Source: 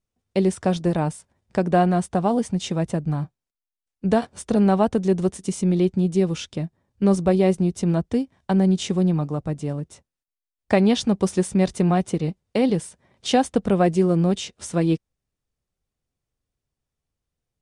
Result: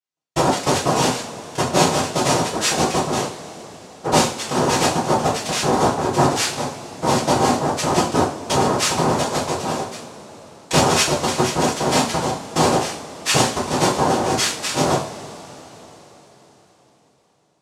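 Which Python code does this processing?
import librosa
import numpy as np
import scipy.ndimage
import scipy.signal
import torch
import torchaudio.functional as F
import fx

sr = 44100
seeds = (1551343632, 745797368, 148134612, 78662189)

y = fx.highpass(x, sr, hz=1000.0, slope=6)
y = fx.rider(y, sr, range_db=4, speed_s=0.5)
y = fx.leveller(y, sr, passes=3)
y = fx.noise_vocoder(y, sr, seeds[0], bands=2)
y = fx.rev_double_slope(y, sr, seeds[1], early_s=0.4, late_s=4.6, knee_db=-22, drr_db=-5.5)
y = F.gain(torch.from_numpy(y), -5.0).numpy()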